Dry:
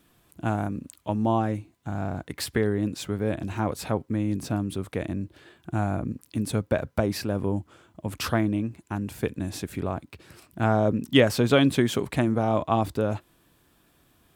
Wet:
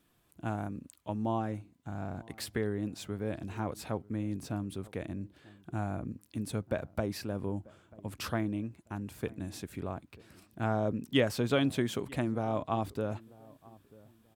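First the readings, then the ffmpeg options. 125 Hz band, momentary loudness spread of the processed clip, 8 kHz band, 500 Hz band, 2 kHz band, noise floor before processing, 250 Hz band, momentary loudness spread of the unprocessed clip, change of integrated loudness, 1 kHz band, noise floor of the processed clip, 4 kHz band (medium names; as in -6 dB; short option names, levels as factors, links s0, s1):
-8.5 dB, 14 LU, -8.5 dB, -8.5 dB, -8.5 dB, -64 dBFS, -8.5 dB, 12 LU, -8.5 dB, -8.5 dB, -69 dBFS, -8.5 dB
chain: -filter_complex "[0:a]asplit=2[s0][s1];[s1]adelay=939,lowpass=f=1000:p=1,volume=0.0794,asplit=2[s2][s3];[s3]adelay=939,lowpass=f=1000:p=1,volume=0.3[s4];[s0][s2][s4]amix=inputs=3:normalize=0,volume=0.376"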